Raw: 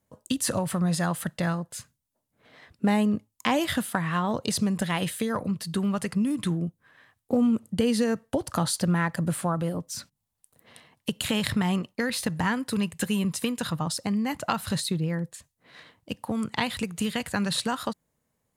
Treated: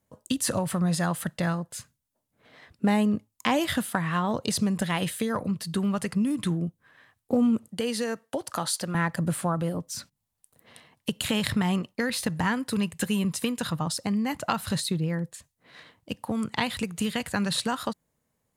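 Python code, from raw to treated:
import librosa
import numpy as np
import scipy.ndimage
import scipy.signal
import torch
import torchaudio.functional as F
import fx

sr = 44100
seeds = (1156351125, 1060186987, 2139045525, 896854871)

y = fx.highpass(x, sr, hz=520.0, slope=6, at=(7.68, 8.95))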